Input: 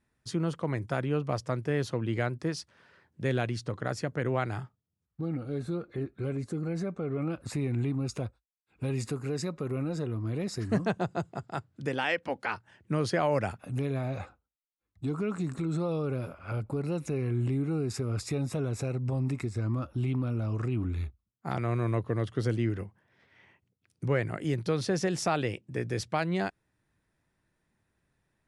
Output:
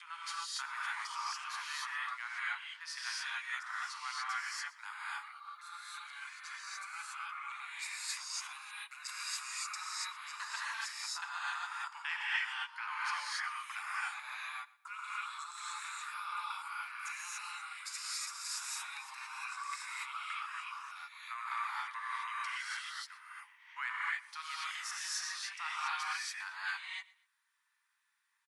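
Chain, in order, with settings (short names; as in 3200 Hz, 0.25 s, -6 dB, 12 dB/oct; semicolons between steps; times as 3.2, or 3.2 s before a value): slices in reverse order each 0.165 s, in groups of 3; steep high-pass 940 Hz 72 dB/oct; on a send: feedback echo 0.121 s, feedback 30%, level -21 dB; on the sum: non-linear reverb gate 0.31 s rising, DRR -8 dB; vocal rider within 4 dB 0.5 s; gain -5.5 dB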